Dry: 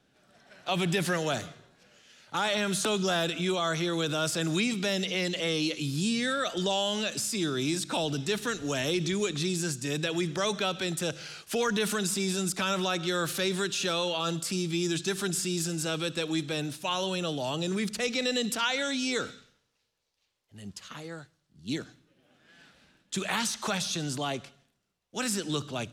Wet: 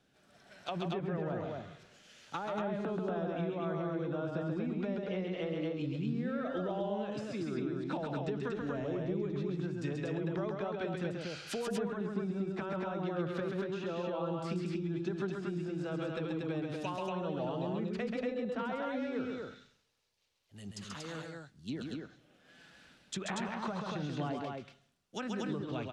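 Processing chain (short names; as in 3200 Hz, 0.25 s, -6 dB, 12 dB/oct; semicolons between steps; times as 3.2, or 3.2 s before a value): treble ducked by the level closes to 920 Hz, closed at -26 dBFS; compressor, threshold -31 dBFS, peak gain reduction 6 dB; loudspeakers at several distances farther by 46 m -4 dB, 81 m -3 dB; gain -3.5 dB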